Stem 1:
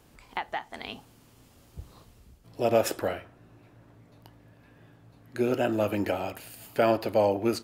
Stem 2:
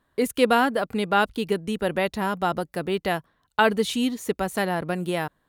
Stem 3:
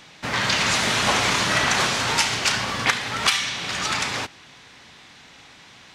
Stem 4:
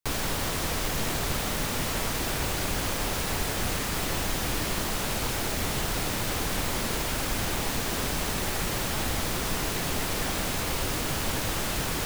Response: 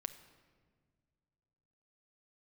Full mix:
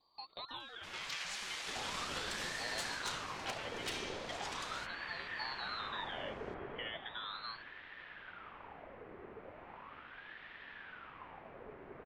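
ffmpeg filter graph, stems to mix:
-filter_complex "[0:a]equalizer=f=1.9k:t=o:w=0.41:g=-15,volume=-12.5dB[a];[1:a]acrossover=split=490|3400[b][c][d];[b]acompressor=threshold=-35dB:ratio=4[e];[c]acompressor=threshold=-32dB:ratio=4[f];[d]acompressor=threshold=-59dB:ratio=4[g];[e][f][g]amix=inputs=3:normalize=0,volume=-16dB,asplit=2[h][i];[i]volume=-8.5dB[j];[2:a]highpass=1.3k,volume=13dB,asoftclip=hard,volume=-13dB,adelay=600,volume=-17.5dB[k];[3:a]lowpass=f=1.8k:w=0.5412,lowpass=f=1.8k:w=1.3066,adelay=1700,volume=-12dB,afade=t=out:st=6.6:d=0.41:silence=0.421697,asplit=2[l][m];[m]volume=-9.5dB[n];[a][h]amix=inputs=2:normalize=0,lowpass=f=2.6k:t=q:w=0.5098,lowpass=f=2.6k:t=q:w=0.6013,lowpass=f=2.6k:t=q:w=0.9,lowpass=f=2.6k:t=q:w=2.563,afreqshift=-3000,alimiter=level_in=9dB:limit=-24dB:level=0:latency=1,volume=-9dB,volume=0dB[o];[j][n]amix=inputs=2:normalize=0,aecho=0:1:306:1[p];[k][l][o][p]amix=inputs=4:normalize=0,aeval=exprs='val(0)*sin(2*PI*1100*n/s+1100*0.65/0.38*sin(2*PI*0.38*n/s))':c=same"

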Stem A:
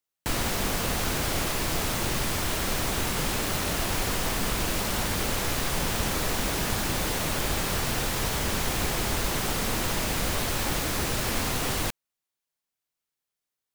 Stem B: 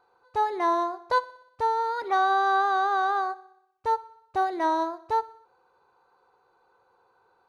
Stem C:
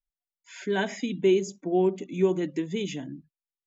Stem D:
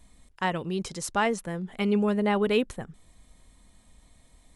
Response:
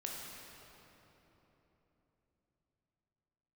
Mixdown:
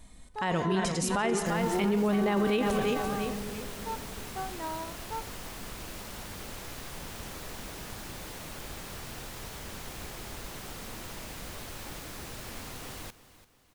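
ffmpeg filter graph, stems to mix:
-filter_complex "[0:a]adelay=1200,volume=-14dB,asplit=2[a][b];[b]volume=-16dB[c];[1:a]volume=-12.5dB[d];[2:a]volume=-7dB[e];[3:a]volume=2dB,asplit=3[f][g][h];[g]volume=-7.5dB[i];[h]volume=-7dB[j];[4:a]atrim=start_sample=2205[k];[i][k]afir=irnorm=-1:irlink=0[l];[c][j]amix=inputs=2:normalize=0,aecho=0:1:341|682|1023|1364|1705|2046:1|0.4|0.16|0.064|0.0256|0.0102[m];[a][d][e][f][l][m]amix=inputs=6:normalize=0,alimiter=limit=-19.5dB:level=0:latency=1:release=25"

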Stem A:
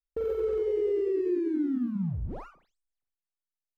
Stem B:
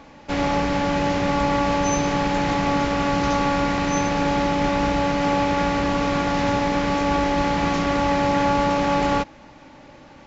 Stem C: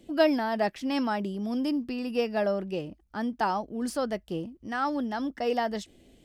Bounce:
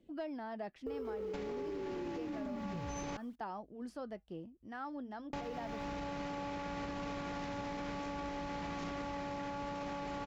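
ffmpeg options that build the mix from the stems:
-filter_complex "[0:a]adelay=700,volume=-5.5dB[a];[1:a]acompressor=threshold=-29dB:ratio=10,adelay=1050,volume=2.5dB,asplit=3[b][c][d];[b]atrim=end=3.17,asetpts=PTS-STARTPTS,afade=t=out:st=3.166:d=0.004:c=hsin[e];[c]atrim=start=3.17:end=5.33,asetpts=PTS-STARTPTS,volume=0[f];[d]atrim=start=5.33,asetpts=PTS-STARTPTS,afade=t=in:d=0.004:c=hsin[g];[e][f][g]concat=n=3:v=0:a=1[h];[2:a]aemphasis=mode=reproduction:type=75kf,flanger=delay=0.6:depth=2.9:regen=-87:speed=0.34:shape=triangular,volume=-8dB,asplit=2[i][j];[j]apad=whole_len=498873[k];[h][k]sidechaincompress=threshold=-51dB:ratio=4:attack=16:release=246[l];[a][l]amix=inputs=2:normalize=0,acrusher=bits=11:mix=0:aa=0.000001,alimiter=level_in=1.5dB:limit=-24dB:level=0:latency=1,volume=-1.5dB,volume=0dB[m];[i][m]amix=inputs=2:normalize=0,asoftclip=type=tanh:threshold=-24.5dB,acompressor=threshold=-38dB:ratio=6"

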